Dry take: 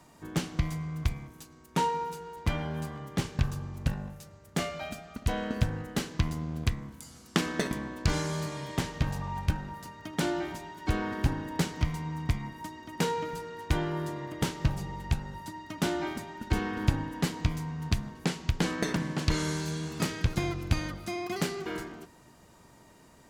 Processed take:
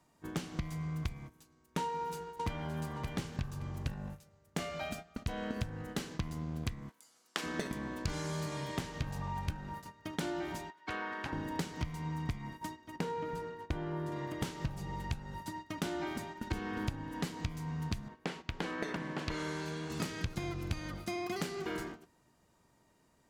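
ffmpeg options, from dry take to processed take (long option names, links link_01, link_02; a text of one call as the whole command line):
ffmpeg -i in.wav -filter_complex "[0:a]asplit=2[link_01][link_02];[link_02]afade=type=in:start_time=1.82:duration=0.01,afade=type=out:start_time=2.79:duration=0.01,aecho=0:1:570|1140|1710:0.334965|0.10049|0.0301469[link_03];[link_01][link_03]amix=inputs=2:normalize=0,asplit=3[link_04][link_05][link_06];[link_04]afade=type=out:start_time=6.88:duration=0.02[link_07];[link_05]highpass=500,afade=type=in:start_time=6.88:duration=0.02,afade=type=out:start_time=7.42:duration=0.02[link_08];[link_06]afade=type=in:start_time=7.42:duration=0.02[link_09];[link_07][link_08][link_09]amix=inputs=3:normalize=0,asettb=1/sr,asplit=3[link_10][link_11][link_12];[link_10]atrim=end=10.704[link_13];[link_11]atrim=start=10.7:end=11.33,asetpts=PTS-STARTPTS,afade=type=in:duration=0.004:curve=qsin,afade=type=out:start_time=0.626:duration=0.004:curve=qsin,bandpass=frequency=1600:width_type=q:width=0.69[link_14];[link_12]atrim=start=11.326[link_15];[link_13][link_14]acrossfade=duration=0.004:curve1=hsin:curve2=qsin[link_16];[link_16][link_15]acrossfade=duration=0.004:curve1=qsin:curve2=hsin,asettb=1/sr,asplit=3[link_17][link_18][link_19];[link_17]atrim=end=12.964[link_20];[link_18]atrim=start=12.96:end=14.12,asetpts=PTS-STARTPTS,afade=type=in:duration=0.004:curve=qsin,afade=type=out:start_time=1.156:duration=0.004:curve=qsin,highshelf=frequency=2500:gain=-10[link_21];[link_19]atrim=start=14.116[link_22];[link_20][link_21]acrossfade=duration=0.004:curve1=hsin:curve2=qsin[link_23];[link_23][link_22]acrossfade=duration=0.004:curve1=qsin:curve2=hsin,asettb=1/sr,asplit=3[link_24][link_25][link_26];[link_24]atrim=end=18.084[link_27];[link_25]atrim=start=18.08:end=19.9,asetpts=PTS-STARTPTS,afade=type=in:duration=0.004:curve=qsin,afade=type=out:start_time=1.816:duration=0.004:curve=qsin,bass=frequency=250:gain=-9,treble=frequency=4000:gain=-11[link_28];[link_26]atrim=start=19.896[link_29];[link_27][link_28]acrossfade=duration=0.004:curve1=hsin:curve2=qsin[link_30];[link_30][link_29]acrossfade=duration=0.004:curve1=qsin:curve2=hsin,agate=range=-13dB:threshold=-42dB:ratio=16:detection=peak,acompressor=threshold=-34dB:ratio=4" out.wav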